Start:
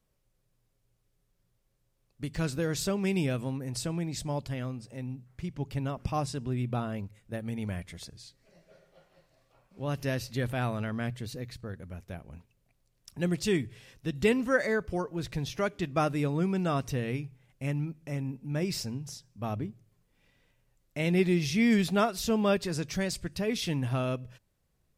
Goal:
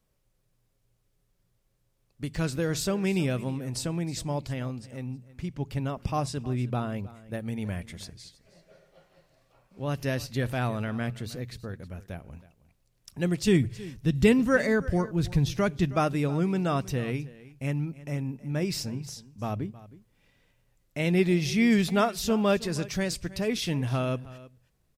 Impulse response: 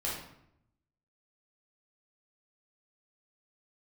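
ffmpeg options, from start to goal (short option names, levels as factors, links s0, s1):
-filter_complex "[0:a]asettb=1/sr,asplit=3[s0][s1][s2];[s0]atrim=end=13.474[s3];[s1]atrim=start=13.47:end=15.93,asetpts=PTS-STARTPTS,afade=t=in:d=0.004:c=qsin,afade=t=out:st=2.456:d=0.004:c=qsin,bass=f=250:g=9,treble=f=4000:g=2[s4];[s2]atrim=start=15.926[s5];[s3][s4]acrossfade=d=0.004:c1=hsin:c2=qsin[s6];[s6][s5]acrossfade=d=0.004:c1=qsin:c2=hsin,aecho=1:1:317:0.119,volume=1.26"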